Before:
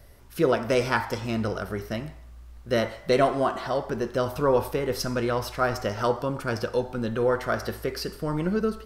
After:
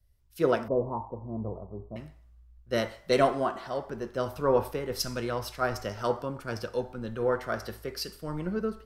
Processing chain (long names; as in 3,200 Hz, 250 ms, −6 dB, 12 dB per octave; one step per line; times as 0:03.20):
0:00.68–0:01.96: Butterworth low-pass 1,100 Hz 96 dB per octave
multiband upward and downward expander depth 70%
level −5 dB